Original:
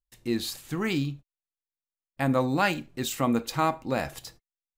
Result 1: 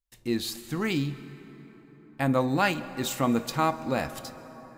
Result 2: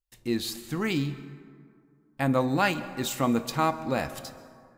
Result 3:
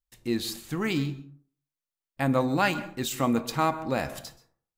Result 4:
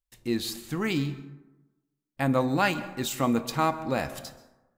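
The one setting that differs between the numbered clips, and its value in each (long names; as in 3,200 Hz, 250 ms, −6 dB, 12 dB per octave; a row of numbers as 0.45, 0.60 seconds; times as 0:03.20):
dense smooth reverb, RT60: 5.2, 2.3, 0.51, 1.1 seconds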